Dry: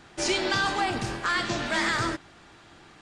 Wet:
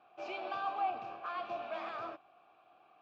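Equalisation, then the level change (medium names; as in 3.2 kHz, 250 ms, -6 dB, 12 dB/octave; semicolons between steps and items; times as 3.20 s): vowel filter a; distance through air 160 m; 0.0 dB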